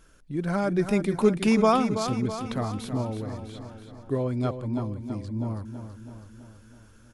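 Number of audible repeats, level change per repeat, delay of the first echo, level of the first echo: 6, -4.5 dB, 327 ms, -9.5 dB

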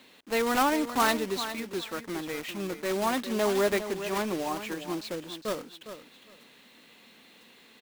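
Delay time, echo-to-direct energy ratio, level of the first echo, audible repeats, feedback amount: 407 ms, -11.0 dB, -11.0 dB, 2, 18%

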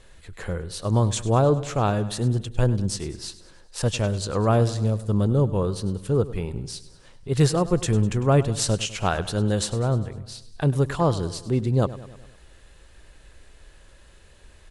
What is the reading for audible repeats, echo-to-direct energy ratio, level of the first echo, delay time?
4, -14.5 dB, -16.0 dB, 101 ms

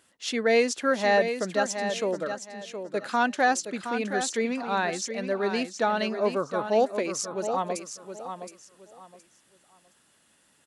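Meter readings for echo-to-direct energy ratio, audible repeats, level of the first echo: -8.0 dB, 3, -8.5 dB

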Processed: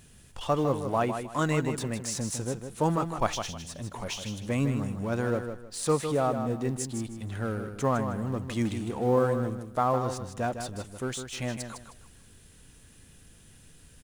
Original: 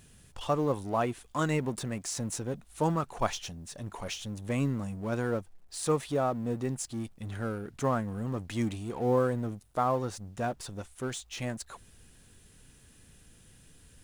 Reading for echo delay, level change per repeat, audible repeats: 156 ms, -11.5 dB, 3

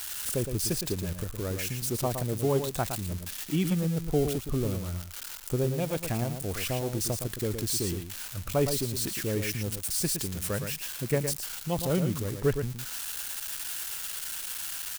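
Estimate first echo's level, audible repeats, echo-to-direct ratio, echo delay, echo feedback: -7.5 dB, 1, -7.5 dB, 114 ms, no regular repeats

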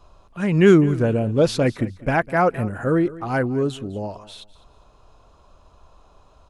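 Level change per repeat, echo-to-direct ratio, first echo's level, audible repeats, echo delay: -12.0 dB, -18.0 dB, -18.5 dB, 2, 204 ms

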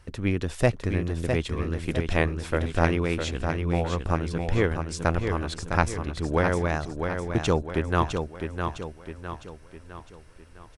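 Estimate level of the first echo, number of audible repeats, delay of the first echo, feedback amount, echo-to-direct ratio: -6.0 dB, 5, 657 ms, 46%, -5.0 dB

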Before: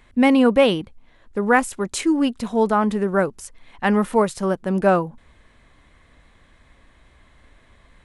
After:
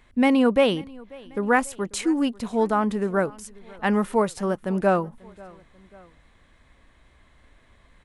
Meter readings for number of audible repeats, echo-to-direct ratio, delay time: 2, -22.5 dB, 540 ms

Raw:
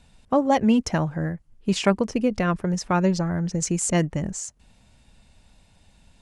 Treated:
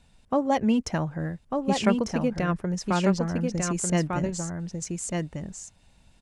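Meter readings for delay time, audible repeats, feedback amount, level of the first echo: 1197 ms, 1, no regular repeats, -4.0 dB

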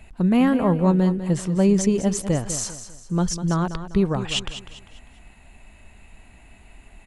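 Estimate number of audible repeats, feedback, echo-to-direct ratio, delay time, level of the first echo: 3, 37%, -11.0 dB, 199 ms, -11.5 dB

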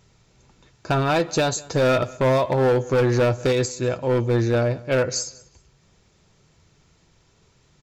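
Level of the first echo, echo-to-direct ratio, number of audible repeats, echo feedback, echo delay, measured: -22.5 dB, -22.5 dB, 2, 24%, 192 ms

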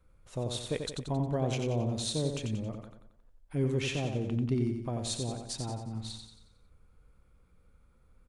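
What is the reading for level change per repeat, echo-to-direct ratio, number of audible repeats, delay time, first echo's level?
-6.5 dB, -5.0 dB, 5, 90 ms, -6.0 dB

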